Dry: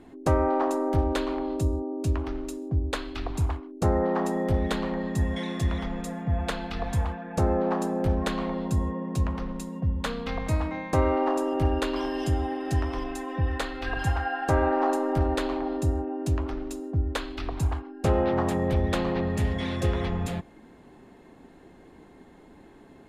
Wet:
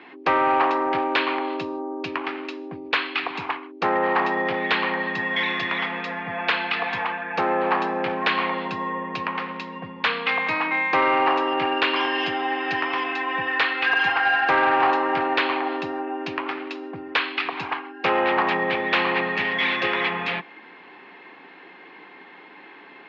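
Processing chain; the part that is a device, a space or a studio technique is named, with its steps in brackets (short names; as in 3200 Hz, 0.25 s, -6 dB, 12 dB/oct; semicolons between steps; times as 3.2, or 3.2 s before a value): HPF 170 Hz 24 dB/oct; air absorption 210 m; passive tone stack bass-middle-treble 5-5-5; overdrive pedal into a guitar cabinet (overdrive pedal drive 31 dB, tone 3200 Hz, clips at -11 dBFS; speaker cabinet 100–4400 Hz, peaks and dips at 150 Hz -6 dB, 230 Hz -10 dB, 630 Hz -7 dB, 1400 Hz -3 dB, 2400 Hz +4 dB, 3700 Hz -4 dB); gain +6 dB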